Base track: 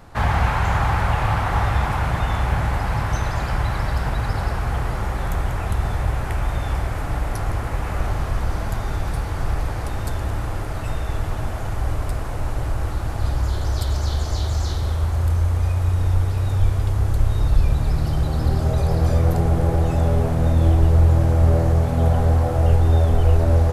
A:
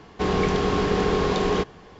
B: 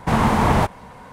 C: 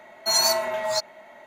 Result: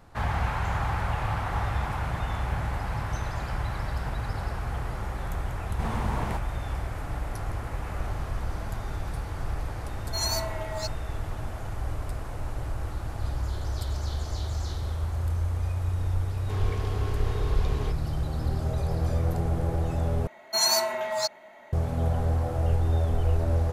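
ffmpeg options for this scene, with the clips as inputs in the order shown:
ffmpeg -i bed.wav -i cue0.wav -i cue1.wav -i cue2.wav -filter_complex "[3:a]asplit=2[link_01][link_02];[0:a]volume=-8.5dB[link_03];[1:a]highpass=270[link_04];[link_03]asplit=2[link_05][link_06];[link_05]atrim=end=20.274[link_07];[link_02]atrim=end=1.46,asetpts=PTS-STARTPTS,volume=-2.5dB[link_08];[link_06]atrim=start=21.726[link_09];[2:a]atrim=end=1.12,asetpts=PTS-STARTPTS,volume=-15.5dB,afade=type=in:duration=0.004:curve=hsin,afade=type=out:start_time=1.116:duration=0.004:curve=hsin,adelay=5720[link_10];[link_01]atrim=end=1.46,asetpts=PTS-STARTPTS,volume=-9dB,afade=type=in:duration=0.004:curve=hsin,afade=type=out:start_time=1.456:duration=0.004:curve=hsin,adelay=9870[link_11];[link_04]atrim=end=1.99,asetpts=PTS-STARTPTS,volume=-14dB,afade=type=in:duration=0.004:curve=hsin,afade=type=out:start_time=1.986:duration=0.004:curve=hsin,adelay=16290[link_12];[link_07][link_08]acrossfade=duration=0.004:curve1=hsin:curve2=hsin[link_13];[link_13][link_09]acrossfade=duration=0.004:curve1=hsin:curve2=hsin[link_14];[link_14][link_10][link_11][link_12]amix=inputs=4:normalize=0" out.wav

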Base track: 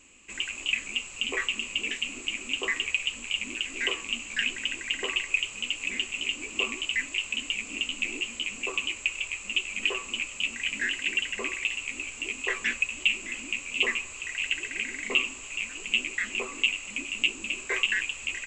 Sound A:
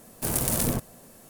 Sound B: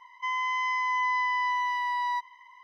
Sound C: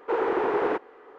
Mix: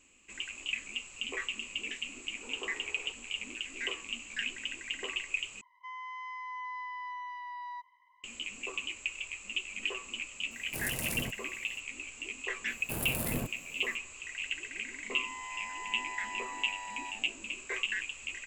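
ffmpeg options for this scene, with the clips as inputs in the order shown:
ffmpeg -i bed.wav -i cue0.wav -i cue1.wav -i cue2.wav -filter_complex "[2:a]asplit=2[link_01][link_02];[1:a]asplit=2[link_03][link_04];[0:a]volume=-7.5dB[link_05];[3:a]acompressor=threshold=-36dB:ratio=6:attack=3.2:release=140:knee=1:detection=peak[link_06];[link_01]lowpass=frequency=2100:poles=1[link_07];[link_04]equalizer=frequency=6400:width_type=o:width=0.84:gain=-11[link_08];[link_02]asplit=8[link_09][link_10][link_11][link_12][link_13][link_14][link_15][link_16];[link_10]adelay=84,afreqshift=-100,volume=-9.5dB[link_17];[link_11]adelay=168,afreqshift=-200,volume=-14.4dB[link_18];[link_12]adelay=252,afreqshift=-300,volume=-19.3dB[link_19];[link_13]adelay=336,afreqshift=-400,volume=-24.1dB[link_20];[link_14]adelay=420,afreqshift=-500,volume=-29dB[link_21];[link_15]adelay=504,afreqshift=-600,volume=-33.9dB[link_22];[link_16]adelay=588,afreqshift=-700,volume=-38.8dB[link_23];[link_09][link_17][link_18][link_19][link_20][link_21][link_22][link_23]amix=inputs=8:normalize=0[link_24];[link_05]asplit=2[link_25][link_26];[link_25]atrim=end=5.614[link_27];[link_07]atrim=end=2.63,asetpts=PTS-STARTPTS,volume=-12dB[link_28];[link_26]atrim=start=8.236[link_29];[link_06]atrim=end=1.18,asetpts=PTS-STARTPTS,volume=-14.5dB,afade=type=in:duration=0.004:curve=hsin,afade=type=out:start_time=1.176:duration=0.004:curve=hsin,adelay=2350[link_30];[link_03]atrim=end=1.29,asetpts=PTS-STARTPTS,volume=-11dB,afade=type=in:duration=0.004:curve=hsin,afade=type=out:start_time=1.286:duration=0.004:curve=hsin,adelay=10510[link_31];[link_08]atrim=end=1.29,asetpts=PTS-STARTPTS,volume=-7.5dB,afade=type=in:duration=0.004:curve=hsin,afade=type=out:start_time=1.286:duration=0.004:curve=hsin,adelay=12670[link_32];[link_24]atrim=end=2.63,asetpts=PTS-STARTPTS,volume=-15dB,afade=type=in:duration=0.004:curve=hsin,afade=type=out:start_time=2.626:duration=0.004:curve=hsin,adelay=14910[link_33];[link_27][link_28]acrossfade=duration=0.004:curve1=hsin:curve2=hsin[link_34];[link_34][link_29]acrossfade=duration=0.004:curve1=hsin:curve2=hsin[link_35];[link_35][link_30][link_31][link_32][link_33]amix=inputs=5:normalize=0" out.wav

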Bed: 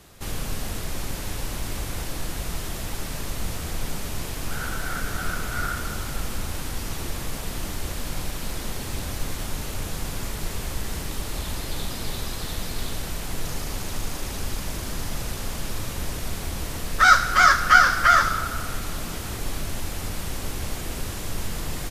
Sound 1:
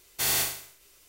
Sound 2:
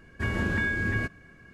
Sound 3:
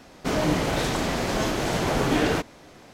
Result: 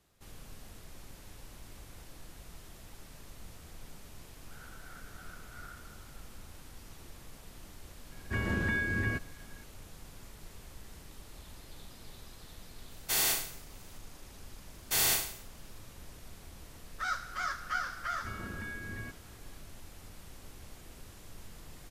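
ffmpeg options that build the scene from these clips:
ffmpeg -i bed.wav -i cue0.wav -i cue1.wav -filter_complex "[2:a]asplit=2[link_01][link_02];[1:a]asplit=2[link_03][link_04];[0:a]volume=-20dB[link_05];[link_03]highpass=150[link_06];[link_04]agate=range=-33dB:threshold=-52dB:ratio=3:release=100:detection=peak[link_07];[link_01]atrim=end=1.53,asetpts=PTS-STARTPTS,volume=-4dB,afade=type=in:duration=0.004:curve=hsin,afade=type=out:start_time=1.526:duration=0.004:curve=hsin,adelay=8110[link_08];[link_06]atrim=end=1.08,asetpts=PTS-STARTPTS,volume=-3dB,afade=type=in:duration=0.004:curve=hsin,afade=type=out:start_time=1.076:duration=0.004:curve=hsin,adelay=12900[link_09];[link_07]atrim=end=1.08,asetpts=PTS-STARTPTS,volume=-2dB,afade=type=in:duration=0.004:curve=hsin,afade=type=out:start_time=1.076:duration=0.004:curve=hsin,adelay=14720[link_10];[link_02]atrim=end=1.53,asetpts=PTS-STARTPTS,volume=-14.5dB,afade=type=in:duration=0.004:curve=hsin,afade=type=out:start_time=1.526:duration=0.004:curve=hsin,adelay=18040[link_11];[link_05][link_08][link_09][link_10][link_11]amix=inputs=5:normalize=0" out.wav

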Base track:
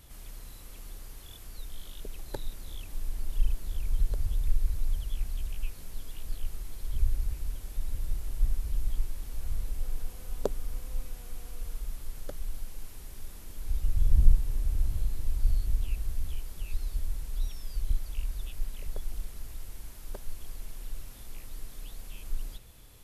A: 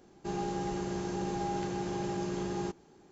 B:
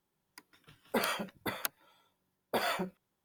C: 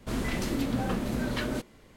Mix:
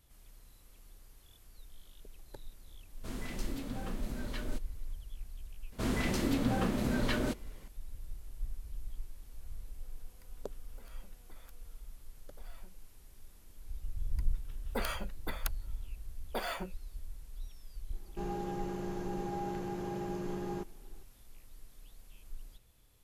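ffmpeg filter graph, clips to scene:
ffmpeg -i bed.wav -i cue0.wav -i cue1.wav -i cue2.wav -filter_complex "[3:a]asplit=2[link_01][link_02];[2:a]asplit=2[link_03][link_04];[0:a]volume=-12.5dB[link_05];[link_01]highshelf=frequency=4800:gain=5[link_06];[link_03]acompressor=threshold=-46dB:ratio=6:attack=3.2:release=140:knee=1:detection=peak[link_07];[1:a]equalizer=frequency=5700:width=0.58:gain=-7.5[link_08];[link_06]atrim=end=1.96,asetpts=PTS-STARTPTS,volume=-12dB,afade=type=in:duration=0.004:curve=hsin,afade=type=out:start_time=1.956:duration=0.004:curve=hsin,adelay=2970[link_09];[link_02]atrim=end=1.96,asetpts=PTS-STARTPTS,volume=-1.5dB,afade=type=in:duration=0.004:curve=hsin,afade=type=out:start_time=1.956:duration=0.004:curve=hsin,adelay=5720[link_10];[link_07]atrim=end=3.24,asetpts=PTS-STARTPTS,volume=-12.5dB,afade=type=in:duration=0.004:curve=hsin,afade=type=out:start_time=3.236:duration=0.004:curve=hsin,adelay=9840[link_11];[link_04]atrim=end=3.24,asetpts=PTS-STARTPTS,volume=-5dB,afade=type=in:duration=0.004:curve=hsin,afade=type=out:start_time=3.236:duration=0.004:curve=hsin,adelay=13810[link_12];[link_08]atrim=end=3.11,asetpts=PTS-STARTPTS,volume=-3.5dB,afade=type=in:duration=0.004:curve=hsin,afade=type=out:start_time=3.106:duration=0.004:curve=hsin,adelay=17920[link_13];[link_05][link_09][link_10][link_11][link_12][link_13]amix=inputs=6:normalize=0" out.wav

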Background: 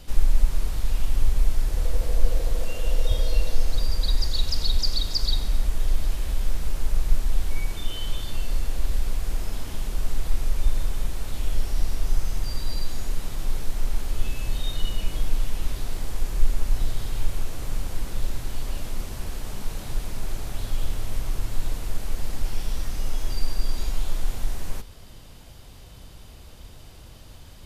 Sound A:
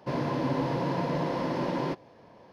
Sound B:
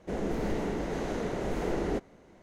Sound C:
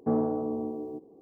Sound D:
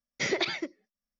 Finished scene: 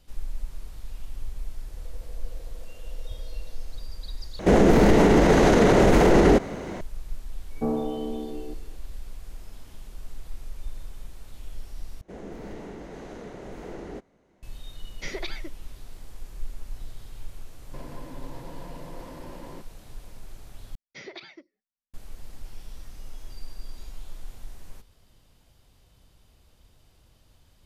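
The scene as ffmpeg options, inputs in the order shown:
ffmpeg -i bed.wav -i cue0.wav -i cue1.wav -i cue2.wav -i cue3.wav -filter_complex "[2:a]asplit=2[link_01][link_02];[4:a]asplit=2[link_03][link_04];[0:a]volume=-14dB[link_05];[link_01]alimiter=level_in=29.5dB:limit=-1dB:release=50:level=0:latency=1[link_06];[1:a]acompressor=threshold=-31dB:ratio=6:attack=3.2:release=140:knee=1:detection=peak[link_07];[link_04]lowpass=frequency=5700:width=0.5412,lowpass=frequency=5700:width=1.3066[link_08];[link_05]asplit=4[link_09][link_10][link_11][link_12];[link_09]atrim=end=4.394[link_13];[link_06]atrim=end=2.42,asetpts=PTS-STARTPTS,volume=-7.5dB[link_14];[link_10]atrim=start=6.806:end=12.014[link_15];[link_02]atrim=end=2.42,asetpts=PTS-STARTPTS,volume=-8dB[link_16];[link_11]atrim=start=14.426:end=20.754[link_17];[link_08]atrim=end=1.19,asetpts=PTS-STARTPTS,volume=-13.5dB[link_18];[link_12]atrim=start=21.936[link_19];[3:a]atrim=end=1.21,asetpts=PTS-STARTPTS,volume=-0.5dB,afade=type=in:duration=0.004:curve=hsin,afade=type=out:start_time=1.206:duration=0.004:curve=hsin,adelay=7550[link_20];[link_03]atrim=end=1.19,asetpts=PTS-STARTPTS,volume=-7dB,afade=type=in:duration=0.004:curve=hsin,afade=type=out:start_time=1.186:duration=0.004:curve=hsin,adelay=14820[link_21];[link_07]atrim=end=2.52,asetpts=PTS-STARTPTS,volume=-8dB,afade=type=in:duration=0.004:curve=hsin,afade=type=out:start_time=2.516:duration=0.004:curve=hsin,adelay=17670[link_22];[link_13][link_14]acrossfade=duration=0.004:curve1=hsin:curve2=hsin[link_23];[link_23][link_15]acrossfade=duration=0.004:curve1=hsin:curve2=hsin[link_24];[link_24][link_16]acrossfade=duration=0.004:curve1=hsin:curve2=hsin[link_25];[link_25][link_17]acrossfade=duration=0.004:curve1=hsin:curve2=hsin[link_26];[link_26][link_18]acrossfade=duration=0.004:curve1=hsin:curve2=hsin[link_27];[link_27][link_19]acrossfade=duration=0.004:curve1=hsin:curve2=hsin[link_28];[link_28][link_20][link_21][link_22]amix=inputs=4:normalize=0" out.wav

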